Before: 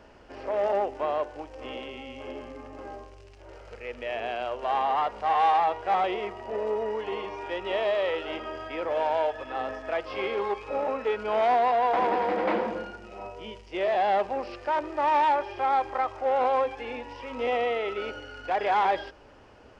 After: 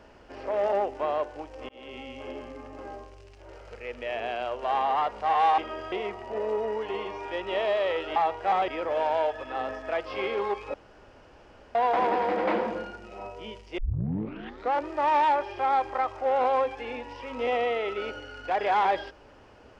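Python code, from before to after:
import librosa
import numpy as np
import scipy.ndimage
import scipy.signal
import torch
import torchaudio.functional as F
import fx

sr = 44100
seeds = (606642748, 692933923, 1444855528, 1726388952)

y = fx.edit(x, sr, fx.fade_in_span(start_s=1.69, length_s=0.28),
    fx.swap(start_s=5.58, length_s=0.52, other_s=8.34, other_length_s=0.34),
    fx.room_tone_fill(start_s=10.74, length_s=1.01),
    fx.tape_start(start_s=13.78, length_s=1.07), tone=tone)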